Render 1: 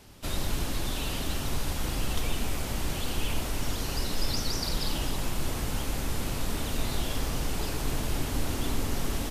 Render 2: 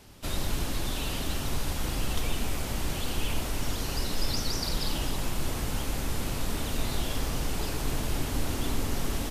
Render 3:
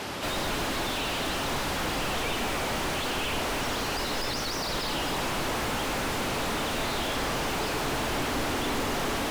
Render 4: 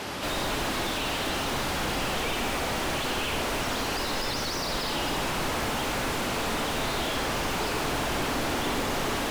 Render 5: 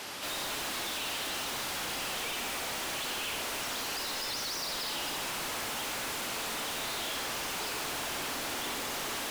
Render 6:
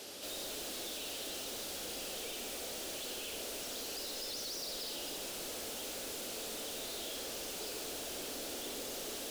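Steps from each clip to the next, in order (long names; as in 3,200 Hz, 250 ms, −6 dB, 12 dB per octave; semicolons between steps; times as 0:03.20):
no processing that can be heard
mid-hump overdrive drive 40 dB, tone 1,800 Hz, clips at −14 dBFS; level −5 dB
flutter between parallel walls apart 11.1 metres, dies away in 0.47 s
spectral tilt +2.5 dB per octave; level −8 dB
octave-band graphic EQ 125/500/1,000/2,000 Hz −8/+6/−12/−8 dB; level −4 dB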